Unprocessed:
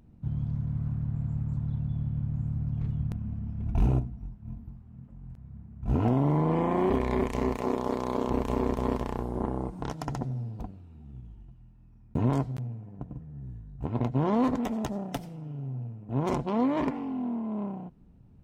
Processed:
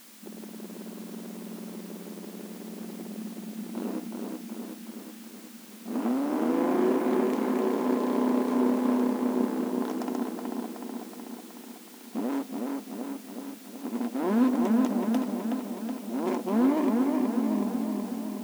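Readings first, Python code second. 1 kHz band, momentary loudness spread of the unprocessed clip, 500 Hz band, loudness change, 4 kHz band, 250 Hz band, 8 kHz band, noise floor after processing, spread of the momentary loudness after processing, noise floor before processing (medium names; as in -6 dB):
-0.5 dB, 18 LU, +1.5 dB, +1.5 dB, +4.0 dB, +4.5 dB, no reading, -46 dBFS, 17 LU, -54 dBFS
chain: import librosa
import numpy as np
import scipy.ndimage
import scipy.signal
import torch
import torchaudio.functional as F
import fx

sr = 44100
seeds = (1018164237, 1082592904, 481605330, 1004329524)

p1 = fx.low_shelf(x, sr, hz=280.0, db=11.5)
p2 = np.clip(p1, -10.0 ** (-15.5 / 20.0), 10.0 ** (-15.5 / 20.0))
p3 = fx.dmg_noise_colour(p2, sr, seeds[0], colour='white', level_db=-49.0)
p4 = fx.brickwall_highpass(p3, sr, low_hz=200.0)
p5 = p4 + fx.echo_wet_lowpass(p4, sr, ms=372, feedback_pct=63, hz=3300.0, wet_db=-3.0, dry=0)
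y = p5 * librosa.db_to_amplitude(-2.5)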